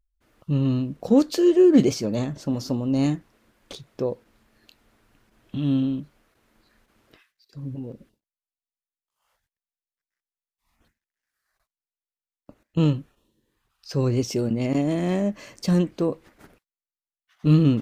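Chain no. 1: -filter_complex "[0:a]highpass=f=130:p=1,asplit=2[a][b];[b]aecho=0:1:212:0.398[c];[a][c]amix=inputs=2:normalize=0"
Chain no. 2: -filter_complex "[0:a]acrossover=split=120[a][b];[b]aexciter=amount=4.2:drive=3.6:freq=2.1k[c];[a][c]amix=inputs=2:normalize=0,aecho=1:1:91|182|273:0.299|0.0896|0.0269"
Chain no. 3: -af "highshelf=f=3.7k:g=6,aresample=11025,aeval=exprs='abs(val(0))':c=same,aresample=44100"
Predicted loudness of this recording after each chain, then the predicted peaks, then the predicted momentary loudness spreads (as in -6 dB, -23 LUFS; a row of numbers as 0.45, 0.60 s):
-23.5, -21.5, -28.5 LUFS; -7.0, -3.0, -6.0 dBFS; 19, 18, 17 LU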